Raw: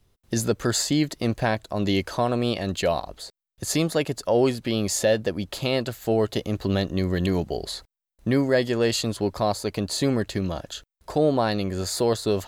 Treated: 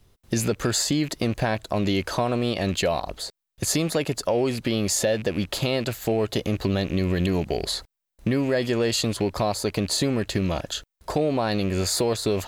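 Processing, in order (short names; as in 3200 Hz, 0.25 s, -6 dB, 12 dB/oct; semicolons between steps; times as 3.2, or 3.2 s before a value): rattling part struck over -34 dBFS, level -31 dBFS; in parallel at +2 dB: limiter -18 dBFS, peak gain reduction 8 dB; on the sum: compressor 3:1, threshold -19 dBFS, peak gain reduction 6 dB; gain -1.5 dB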